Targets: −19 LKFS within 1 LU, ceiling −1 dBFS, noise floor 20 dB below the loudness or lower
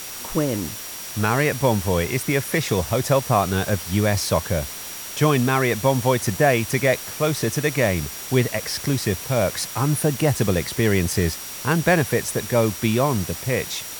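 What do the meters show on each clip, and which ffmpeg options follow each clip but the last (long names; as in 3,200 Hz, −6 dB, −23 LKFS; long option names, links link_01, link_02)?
interfering tone 5,700 Hz; level of the tone −40 dBFS; background noise floor −34 dBFS; target noise floor −42 dBFS; integrated loudness −21.5 LKFS; sample peak −6.0 dBFS; target loudness −19.0 LKFS
→ -af "bandreject=frequency=5700:width=30"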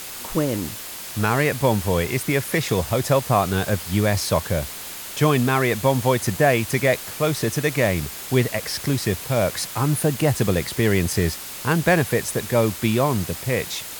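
interfering tone none found; background noise floor −35 dBFS; target noise floor −42 dBFS
→ -af "afftdn=noise_reduction=7:noise_floor=-35"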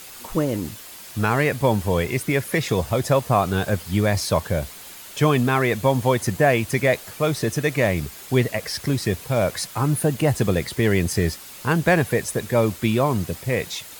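background noise floor −41 dBFS; target noise floor −42 dBFS
→ -af "afftdn=noise_reduction=6:noise_floor=-41"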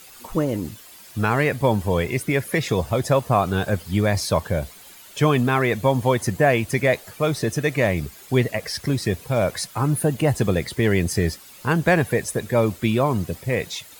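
background noise floor −45 dBFS; integrated loudness −22.0 LKFS; sample peak −6.0 dBFS; target loudness −19.0 LKFS
→ -af "volume=3dB"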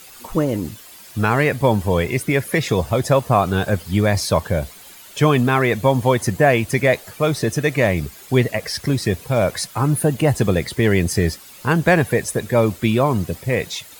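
integrated loudness −19.0 LKFS; sample peak −3.0 dBFS; background noise floor −42 dBFS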